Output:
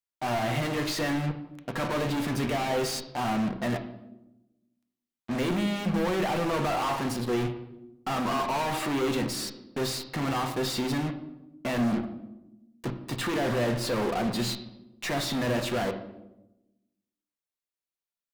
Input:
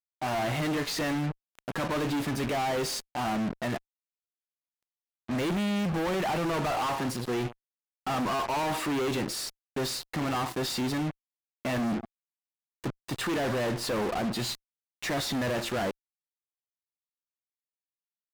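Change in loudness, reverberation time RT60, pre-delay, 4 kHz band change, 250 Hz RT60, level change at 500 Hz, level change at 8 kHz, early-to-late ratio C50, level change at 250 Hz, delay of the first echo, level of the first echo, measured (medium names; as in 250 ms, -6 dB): +1.0 dB, 0.95 s, 4 ms, +0.5 dB, 1.4 s, +1.5 dB, 0.0 dB, 11.0 dB, +1.5 dB, no echo, no echo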